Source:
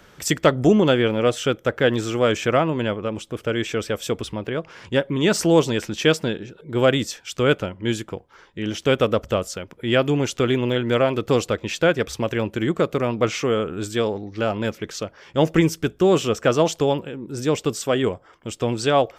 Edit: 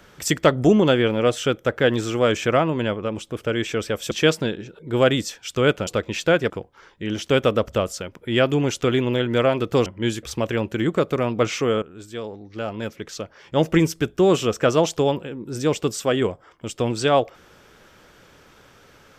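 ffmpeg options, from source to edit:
ffmpeg -i in.wav -filter_complex "[0:a]asplit=7[link_01][link_02][link_03][link_04][link_05][link_06][link_07];[link_01]atrim=end=4.112[link_08];[link_02]atrim=start=5.928:end=7.692[link_09];[link_03]atrim=start=11.418:end=12.052[link_10];[link_04]atrim=start=8.058:end=11.422[link_11];[link_05]atrim=start=7.688:end=8.062[link_12];[link_06]atrim=start=12.048:end=13.64,asetpts=PTS-STARTPTS,afade=type=out:start_time=1.588:duration=0.004:curve=hsin:silence=0.177828[link_13];[link_07]atrim=start=13.64,asetpts=PTS-STARTPTS,afade=type=in:duration=2.04:silence=0.177828[link_14];[link_08][link_09]acrossfade=duration=0.004:curve1=hsin:curve2=hsin[link_15];[link_15][link_10]acrossfade=duration=0.004:curve1=hsin:curve2=hsin[link_16];[link_16][link_11]acrossfade=duration=0.004:curve1=hsin:curve2=hsin[link_17];[link_17][link_12]acrossfade=duration=0.004:curve1=hsin:curve2=hsin[link_18];[link_13][link_14]concat=n=2:v=0:a=1[link_19];[link_18][link_19]acrossfade=duration=0.004:curve1=hsin:curve2=hsin" out.wav

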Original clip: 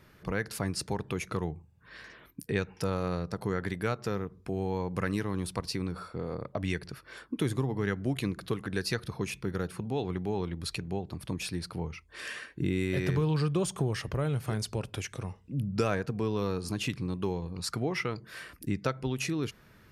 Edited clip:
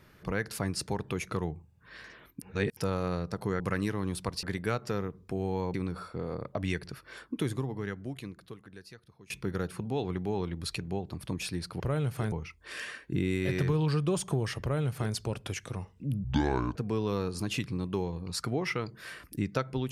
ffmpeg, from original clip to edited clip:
ffmpeg -i in.wav -filter_complex "[0:a]asplit=11[link_01][link_02][link_03][link_04][link_05][link_06][link_07][link_08][link_09][link_10][link_11];[link_01]atrim=end=2.422[link_12];[link_02]atrim=start=2.418:end=2.772,asetpts=PTS-STARTPTS,areverse[link_13];[link_03]atrim=start=2.768:end=3.602[link_14];[link_04]atrim=start=4.908:end=5.742[link_15];[link_05]atrim=start=3.598:end=4.912[link_16];[link_06]atrim=start=5.738:end=9.3,asetpts=PTS-STARTPTS,afade=type=out:start_time=1.502:duration=2.06:curve=qua:silence=0.0794328[link_17];[link_07]atrim=start=9.3:end=11.802,asetpts=PTS-STARTPTS,afade=type=in:duration=0.004:curve=hsin:silence=0.0794328[link_18];[link_08]atrim=start=14.088:end=14.612[link_19];[link_09]atrim=start=11.798:end=15.724[link_20];[link_10]atrim=start=15.72:end=16.05,asetpts=PTS-STARTPTS,asetrate=28224,aresample=44100,atrim=end_sample=22739,asetpts=PTS-STARTPTS[link_21];[link_11]atrim=start=16.046[link_22];[link_12][link_13]acrossfade=duration=0.004:curve1=hsin:curve2=hsin[link_23];[link_23][link_14]acrossfade=duration=0.004:curve1=hsin:curve2=hsin[link_24];[link_24][link_15]acrossfade=duration=0.004:curve1=hsin:curve2=hsin[link_25];[link_25][link_16]acrossfade=duration=0.004:curve1=hsin:curve2=hsin[link_26];[link_17][link_18]concat=n=2:v=0:a=1[link_27];[link_26][link_27]acrossfade=duration=0.004:curve1=hsin:curve2=hsin[link_28];[link_28][link_19]acrossfade=duration=0.004:curve1=hsin:curve2=hsin[link_29];[link_29][link_20]acrossfade=duration=0.004:curve1=hsin:curve2=hsin[link_30];[link_30][link_21]acrossfade=duration=0.004:curve1=hsin:curve2=hsin[link_31];[link_31][link_22]acrossfade=duration=0.004:curve1=hsin:curve2=hsin" out.wav

